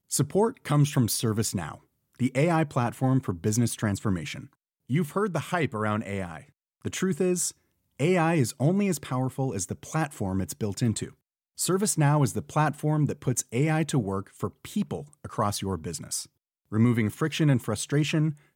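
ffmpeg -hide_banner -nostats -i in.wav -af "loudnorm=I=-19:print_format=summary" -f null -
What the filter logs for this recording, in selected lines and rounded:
Input Integrated:    -27.1 LUFS
Input True Peak:     -11.8 dBTP
Input LRA:             3.2 LU
Input Threshold:     -37.5 LUFS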